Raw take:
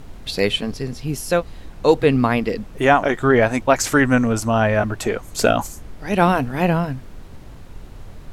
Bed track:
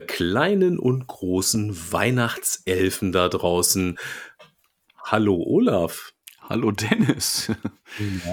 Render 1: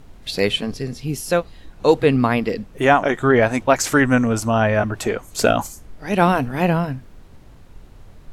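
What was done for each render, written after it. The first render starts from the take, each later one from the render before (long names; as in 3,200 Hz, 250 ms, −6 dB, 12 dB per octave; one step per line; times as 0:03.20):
noise reduction from a noise print 6 dB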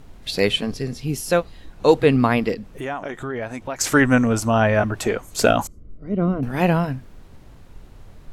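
0:02.54–0:03.81: downward compressor 2.5 to 1, threshold −31 dBFS
0:05.67–0:06.43: moving average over 52 samples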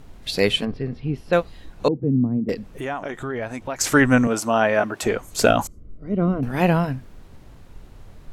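0:00.65–0:01.33: high-frequency loss of the air 400 metres
0:01.88–0:02.49: flat-topped band-pass 180 Hz, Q 0.96
0:04.27–0:05.03: high-pass filter 250 Hz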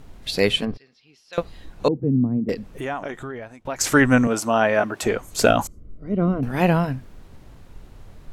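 0:00.77–0:01.38: resonant band-pass 5,600 Hz, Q 1.6
0:03.03–0:03.65: fade out, to −21.5 dB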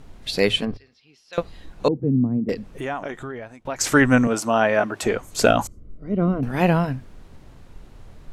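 Bessel low-pass filter 12,000 Hz, order 2
mains-hum notches 50/100 Hz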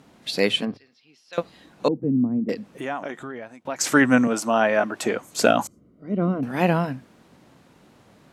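Chebyshev high-pass filter 210 Hz, order 2
parametric band 410 Hz −3.5 dB 0.31 octaves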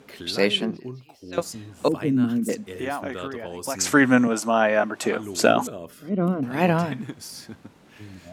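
mix in bed track −15.5 dB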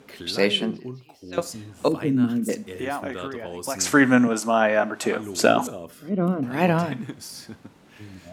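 four-comb reverb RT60 0.43 s, combs from 25 ms, DRR 17.5 dB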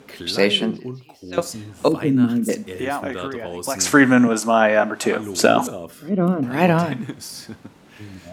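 level +4 dB
brickwall limiter −1 dBFS, peak gain reduction 3 dB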